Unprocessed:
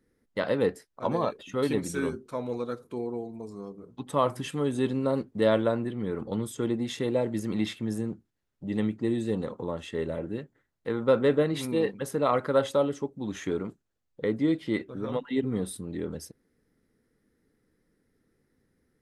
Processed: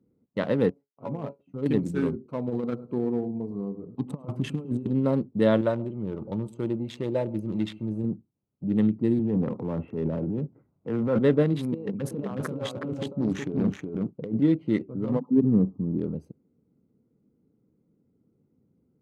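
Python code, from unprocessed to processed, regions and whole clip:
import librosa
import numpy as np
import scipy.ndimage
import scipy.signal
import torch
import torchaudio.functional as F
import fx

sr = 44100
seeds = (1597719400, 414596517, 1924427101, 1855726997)

y = fx.chain(x, sr, fx.law_mismatch(coded='A'),
    fx.high_shelf(hz=3100.0, db=-11.0),
    fx.comb_fb(f0_hz=140.0, decay_s=0.16, harmonics='all', damping=0.0, mix_pct=80), at=(0.7, 1.66))
y = fx.chain(y, sr, fx.over_compress(threshold_db=-32.0, ratio=-0.5),
    fx.echo_feedback(ms=105, feedback_pct=24, wet_db=-14.5), at=(2.47, 4.86))
y = fx.chain(y, sr, fx.peak_eq(hz=260.0, db=-11.5, octaves=0.56),
    fx.comb(ms=3.3, depth=0.4),
    fx.echo_single(ms=130, db=-19.0), at=(5.61, 8.04))
y = fx.chain(y, sr, fx.lowpass(hz=2300.0, slope=24),
    fx.transient(attack_db=-7, sustain_db=7),
    fx.band_squash(depth_pct=40), at=(9.19, 11.19))
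y = fx.chain(y, sr, fx.over_compress(threshold_db=-34.0, ratio=-1.0),
    fx.echo_single(ms=368, db=-3.0),
    fx.doppler_dist(depth_ms=0.26), at=(11.74, 14.42))
y = fx.chain(y, sr, fx.crossing_spikes(level_db=-32.0),
    fx.brickwall_lowpass(high_hz=1300.0),
    fx.peak_eq(hz=210.0, db=4.5, octaves=1.2), at=(15.09, 15.98))
y = fx.wiener(y, sr, points=25)
y = scipy.signal.sosfilt(scipy.signal.butter(2, 150.0, 'highpass', fs=sr, output='sos'), y)
y = fx.bass_treble(y, sr, bass_db=12, treble_db=-5)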